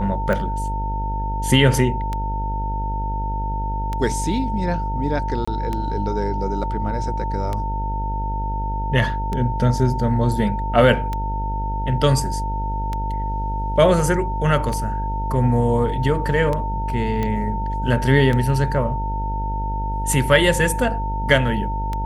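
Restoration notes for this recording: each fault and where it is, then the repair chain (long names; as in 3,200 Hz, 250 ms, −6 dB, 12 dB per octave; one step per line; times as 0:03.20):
mains buzz 50 Hz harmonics 16 −25 dBFS
scratch tick 33 1/3 rpm −12 dBFS
whistle 900 Hz −26 dBFS
0:05.45–0:05.47: drop-out 25 ms
0:17.23: click −12 dBFS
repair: click removal
notch filter 900 Hz, Q 30
hum removal 50 Hz, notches 16
repair the gap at 0:05.45, 25 ms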